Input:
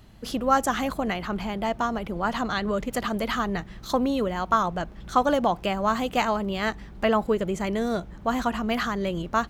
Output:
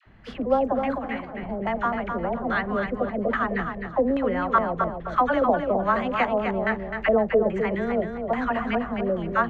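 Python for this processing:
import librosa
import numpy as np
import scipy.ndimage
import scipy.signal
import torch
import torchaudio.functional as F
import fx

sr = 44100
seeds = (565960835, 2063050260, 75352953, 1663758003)

y = fx.high_shelf(x, sr, hz=10000.0, db=11.0)
y = fx.dispersion(y, sr, late='lows', ms=63.0, hz=780.0)
y = fx.filter_lfo_lowpass(y, sr, shape='square', hz=1.2, low_hz=600.0, high_hz=1900.0, q=2.1)
y = fx.comb_fb(y, sr, f0_hz=75.0, decay_s=0.24, harmonics='all', damping=0.0, mix_pct=80, at=(0.98, 1.43))
y = fx.echo_feedback(y, sr, ms=258, feedback_pct=27, wet_db=-6.5)
y = y * 10.0 ** (-1.5 / 20.0)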